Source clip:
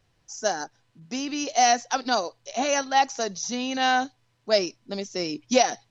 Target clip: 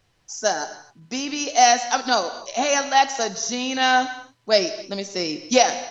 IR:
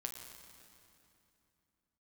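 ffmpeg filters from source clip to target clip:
-filter_complex "[0:a]asplit=2[link_01][link_02];[1:a]atrim=start_sample=2205,afade=type=out:start_time=0.32:duration=0.01,atrim=end_sample=14553,lowshelf=frequency=390:gain=-8.5[link_03];[link_02][link_03]afir=irnorm=-1:irlink=0,volume=4.5dB[link_04];[link_01][link_04]amix=inputs=2:normalize=0,volume=-2dB"

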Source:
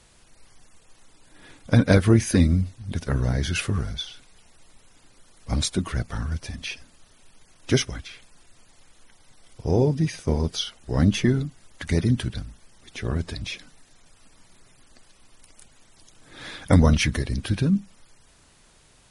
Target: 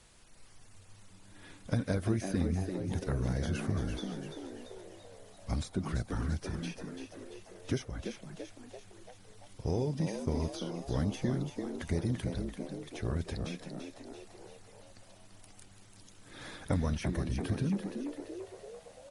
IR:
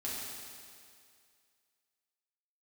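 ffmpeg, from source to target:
-filter_complex "[0:a]acrossover=split=1400|5900[link_01][link_02][link_03];[link_01]acompressor=threshold=-25dB:ratio=4[link_04];[link_02]acompressor=threshold=-48dB:ratio=4[link_05];[link_03]acompressor=threshold=-49dB:ratio=4[link_06];[link_04][link_05][link_06]amix=inputs=3:normalize=0,asplit=8[link_07][link_08][link_09][link_10][link_11][link_12][link_13][link_14];[link_08]adelay=339,afreqshift=93,volume=-7.5dB[link_15];[link_09]adelay=678,afreqshift=186,volume=-12.5dB[link_16];[link_10]adelay=1017,afreqshift=279,volume=-17.6dB[link_17];[link_11]adelay=1356,afreqshift=372,volume=-22.6dB[link_18];[link_12]adelay=1695,afreqshift=465,volume=-27.6dB[link_19];[link_13]adelay=2034,afreqshift=558,volume=-32.7dB[link_20];[link_14]adelay=2373,afreqshift=651,volume=-37.7dB[link_21];[link_07][link_15][link_16][link_17][link_18][link_19][link_20][link_21]amix=inputs=8:normalize=0,volume=-4.5dB"

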